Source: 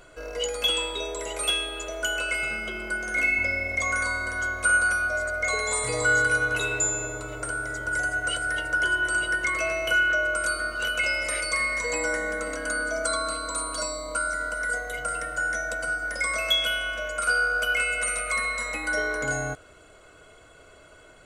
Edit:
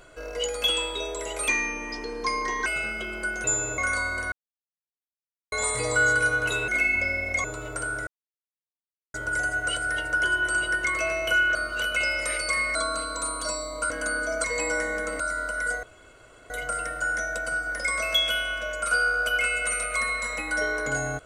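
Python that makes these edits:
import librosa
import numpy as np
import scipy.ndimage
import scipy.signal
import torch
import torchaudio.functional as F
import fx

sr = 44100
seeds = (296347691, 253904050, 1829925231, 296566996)

y = fx.edit(x, sr, fx.speed_span(start_s=1.48, length_s=0.85, speed=0.72),
    fx.swap(start_s=3.11, length_s=0.76, other_s=6.77, other_length_s=0.34),
    fx.silence(start_s=4.41, length_s=1.2),
    fx.insert_silence(at_s=7.74, length_s=1.07),
    fx.cut(start_s=10.15, length_s=0.43),
    fx.swap(start_s=11.78, length_s=0.76, other_s=13.08, other_length_s=1.15),
    fx.insert_room_tone(at_s=14.86, length_s=0.67), tone=tone)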